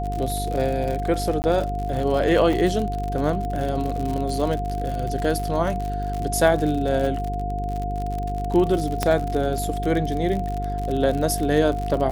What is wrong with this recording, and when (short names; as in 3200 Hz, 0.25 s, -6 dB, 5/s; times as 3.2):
buzz 50 Hz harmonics 9 -28 dBFS
crackle 72/s -26 dBFS
tone 710 Hz -28 dBFS
1.42–1.44 gap 19 ms
2.53 gap 2.8 ms
9.03 pop -6 dBFS